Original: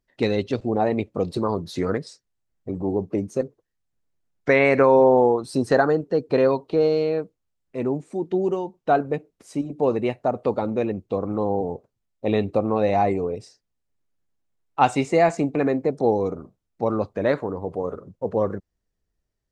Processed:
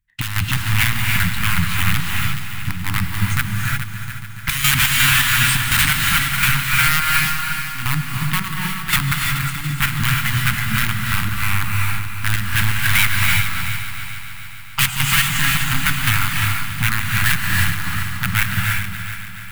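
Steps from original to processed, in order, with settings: integer overflow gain 17 dB; peaking EQ 5 kHz -12.5 dB 1 oct; waveshaping leveller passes 3; compression, threshold -22 dBFS, peak gain reduction 5.5 dB; Chebyshev band-stop 120–1800 Hz, order 2; square tremolo 2.8 Hz, depth 65%, duty 60%; multi-head delay 142 ms, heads second and third, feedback 58%, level -12 dB; gated-style reverb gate 380 ms rising, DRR 2.5 dB; loudness maximiser +13.5 dB; trim -1.5 dB

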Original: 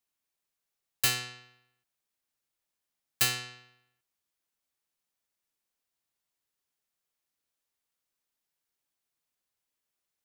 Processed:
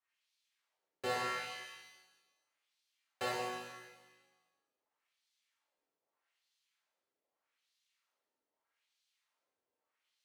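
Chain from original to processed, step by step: LFO band-pass sine 0.81 Hz 370–4100 Hz; pitch-shifted reverb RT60 1.1 s, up +7 st, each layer -8 dB, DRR -8.5 dB; trim +3 dB

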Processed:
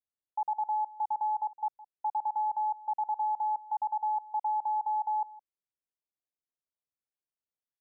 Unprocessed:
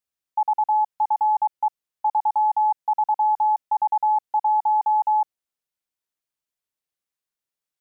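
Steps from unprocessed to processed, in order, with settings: low-pass 1 kHz 12 dB/octave; on a send: delay 163 ms -19.5 dB; on the sum: trim -8 dB

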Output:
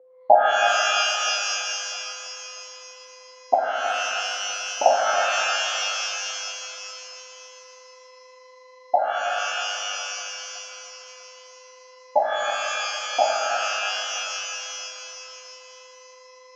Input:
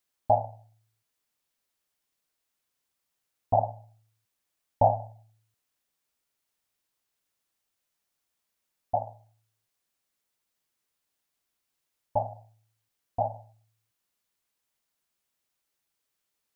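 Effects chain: whistle 510 Hz -56 dBFS; low-pass 1.1 kHz 12 dB/octave; 3.54–4.86 s: compression, threshold -31 dBFS, peak gain reduction 14 dB; high-pass 360 Hz 24 dB/octave; on a send: echo whose repeats swap between lows and highs 323 ms, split 810 Hz, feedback 51%, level -11 dB; on the sum: pitch-shifted reverb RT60 2.9 s, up +12 st, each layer -2 dB, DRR 1 dB; trim +8 dB

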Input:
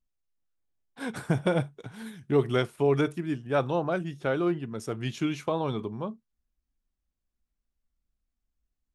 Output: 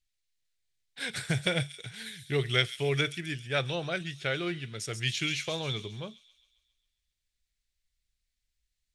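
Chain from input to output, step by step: ten-band graphic EQ 125 Hz +4 dB, 250 Hz -11 dB, 1 kHz -12 dB, 2 kHz +11 dB, 4 kHz +11 dB, 8 kHz +7 dB; feedback echo behind a high-pass 135 ms, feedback 56%, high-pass 4.8 kHz, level -5.5 dB; trim -2 dB

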